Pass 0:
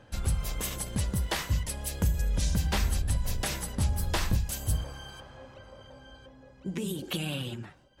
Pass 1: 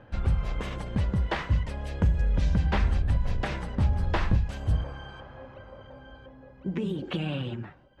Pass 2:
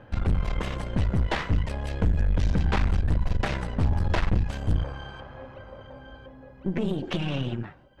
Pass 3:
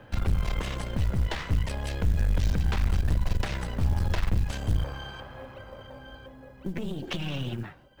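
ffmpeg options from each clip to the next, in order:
-af "lowpass=2200,volume=1.5"
-af "aeval=exprs='(tanh(20*val(0)+0.75)-tanh(0.75))/20':c=same,volume=2.24"
-filter_complex "[0:a]acrossover=split=130[s0][s1];[s1]acompressor=threshold=0.0282:ratio=10[s2];[s0][s2]amix=inputs=2:normalize=0,highshelf=f=2900:g=9,acrusher=bits=8:mode=log:mix=0:aa=0.000001,volume=0.891"

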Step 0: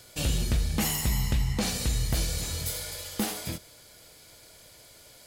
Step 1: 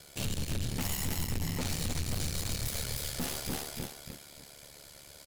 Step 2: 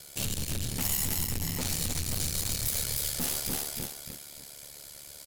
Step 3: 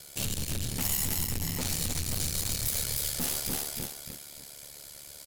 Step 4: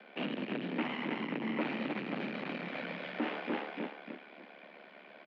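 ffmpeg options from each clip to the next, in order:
-af "aecho=1:1:301|602|903|1204:0.668|0.227|0.0773|0.0263,aeval=exprs='val(0)*sin(2*PI*36*n/s)':c=same,aeval=exprs='(tanh(56.2*val(0)+0.6)-tanh(0.6))/56.2':c=same,volume=1.68"
-af "aemphasis=mode=production:type=cd"
-af anull
-af "highpass=f=160:t=q:w=0.5412,highpass=f=160:t=q:w=1.307,lowpass=f=2600:t=q:w=0.5176,lowpass=f=2600:t=q:w=0.7071,lowpass=f=2600:t=q:w=1.932,afreqshift=57,volume=1.58"

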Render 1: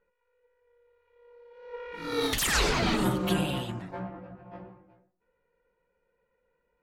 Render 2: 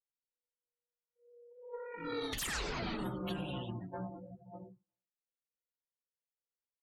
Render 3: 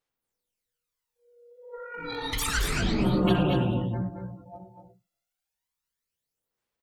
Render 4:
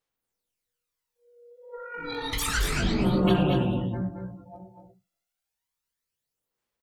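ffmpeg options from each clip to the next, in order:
-af "afftdn=nr=34:nf=-39,acompressor=threshold=0.0251:ratio=6,volume=0.668"
-af "aphaser=in_gain=1:out_gain=1:delay=1.5:decay=0.71:speed=0.3:type=sinusoidal,aecho=1:1:65|111|222|240:0.211|0.119|0.355|0.447,volume=1.78"
-filter_complex "[0:a]asplit=2[s0][s1];[s1]adelay=21,volume=0.299[s2];[s0][s2]amix=inputs=2:normalize=0"

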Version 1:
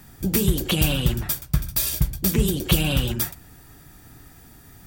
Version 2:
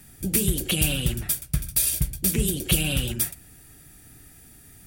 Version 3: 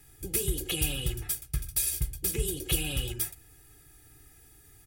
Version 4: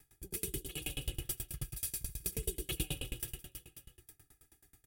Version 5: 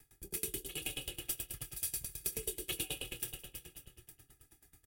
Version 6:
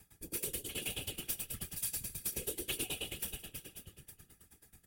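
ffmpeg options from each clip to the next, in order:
-af "equalizer=f=1000:t=o:w=0.67:g=-8,equalizer=f=2500:t=o:w=0.67:g=4,equalizer=f=10000:t=o:w=0.67:g=11,volume=0.631"
-af "aecho=1:1:2.4:0.82,volume=0.376"
-af "aecho=1:1:80|192|348.8|568.3|875.6:0.631|0.398|0.251|0.158|0.1,aeval=exprs='val(0)*pow(10,-29*if(lt(mod(9.3*n/s,1),2*abs(9.3)/1000),1-mod(9.3*n/s,1)/(2*abs(9.3)/1000),(mod(9.3*n/s,1)-2*abs(9.3)/1000)/(1-2*abs(9.3)/1000))/20)':c=same,volume=0.708"
-filter_complex "[0:a]acrossover=split=340[s0][s1];[s0]acompressor=threshold=0.00282:ratio=4[s2];[s2][s1]amix=inputs=2:normalize=0,asplit=2[s3][s4];[s4]adelay=25,volume=0.237[s5];[s3][s5]amix=inputs=2:normalize=0,asplit=2[s6][s7];[s7]adelay=423,lowpass=f=4800:p=1,volume=0.251,asplit=2[s8][s9];[s9]adelay=423,lowpass=f=4800:p=1,volume=0.18[s10];[s6][s8][s10]amix=inputs=3:normalize=0,volume=1.12"
-filter_complex "[0:a]flanger=delay=6.3:depth=2.5:regen=-36:speed=1.8:shape=sinusoidal,asplit=2[s0][s1];[s1]aeval=exprs='0.0106*(abs(mod(val(0)/0.0106+3,4)-2)-1)':c=same,volume=0.562[s2];[s0][s2]amix=inputs=2:normalize=0,afftfilt=real='hypot(re,im)*cos(2*PI*random(0))':imag='hypot(re,im)*sin(2*PI*random(1))':win_size=512:overlap=0.75,volume=2.66"

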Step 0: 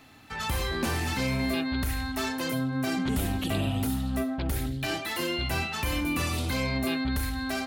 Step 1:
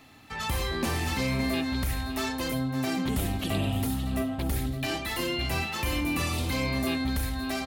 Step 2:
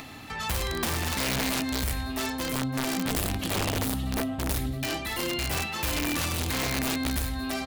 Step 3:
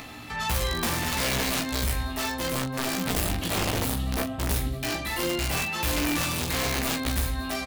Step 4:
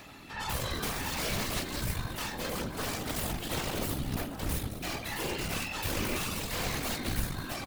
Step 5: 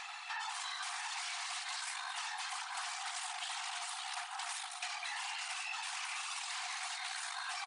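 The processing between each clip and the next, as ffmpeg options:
-af "bandreject=f=1500:w=11,aecho=1:1:564:0.237"
-af "acompressor=mode=upward:threshold=0.0224:ratio=2.5,aeval=exprs='(mod(11.9*val(0)+1,2)-1)/11.9':c=same"
-af "aecho=1:1:17|42:0.631|0.355"
-filter_complex "[0:a]asplit=7[s0][s1][s2][s3][s4][s5][s6];[s1]adelay=210,afreqshift=-110,volume=0.178[s7];[s2]adelay=420,afreqshift=-220,volume=0.107[s8];[s3]adelay=630,afreqshift=-330,volume=0.0638[s9];[s4]adelay=840,afreqshift=-440,volume=0.0385[s10];[s5]adelay=1050,afreqshift=-550,volume=0.0232[s11];[s6]adelay=1260,afreqshift=-660,volume=0.0138[s12];[s0][s7][s8][s9][s10][s11][s12]amix=inputs=7:normalize=0,aeval=exprs='0.168*(cos(1*acos(clip(val(0)/0.168,-1,1)))-cos(1*PI/2))+0.0473*(cos(4*acos(clip(val(0)/0.168,-1,1)))-cos(4*PI/2))':c=same,afftfilt=real='hypot(re,im)*cos(2*PI*random(0))':imag='hypot(re,im)*sin(2*PI*random(1))':win_size=512:overlap=0.75,volume=0.794"
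-af "afftfilt=real='re*between(b*sr/4096,690,10000)':imag='im*between(b*sr/4096,690,10000)':win_size=4096:overlap=0.75,alimiter=level_in=2.37:limit=0.0631:level=0:latency=1:release=108,volume=0.422,acompressor=threshold=0.00631:ratio=6,volume=2"

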